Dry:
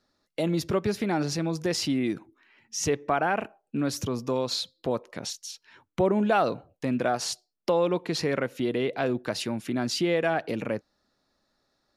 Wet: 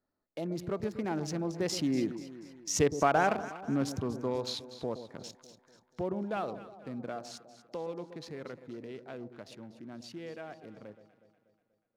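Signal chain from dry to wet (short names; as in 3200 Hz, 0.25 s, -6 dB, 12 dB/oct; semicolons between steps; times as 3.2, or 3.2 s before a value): Wiener smoothing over 15 samples; Doppler pass-by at 2.87, 11 m/s, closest 10 m; echo with dull and thin repeats by turns 0.121 s, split 900 Hz, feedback 70%, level -11 dB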